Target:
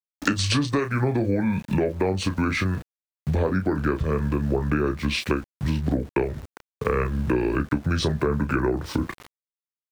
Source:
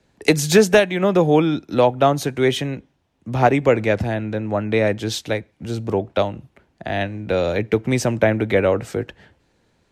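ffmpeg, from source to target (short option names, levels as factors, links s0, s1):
-filter_complex "[0:a]alimiter=limit=0.398:level=0:latency=1:release=100,asetrate=29433,aresample=44100,atempo=1.49831,adynamicequalizer=threshold=0.0251:dfrequency=260:dqfactor=2.5:tfrequency=260:tqfactor=2.5:attack=5:release=100:ratio=0.375:range=2:mode=cutabove:tftype=bell,asplit=2[s0][s1];[s1]aecho=0:1:14|32:0.224|0.355[s2];[s0][s2]amix=inputs=2:normalize=0,aeval=exprs='val(0)*gte(abs(val(0)),0.00841)':c=same,acompressor=threshold=0.0398:ratio=6,volume=2.37"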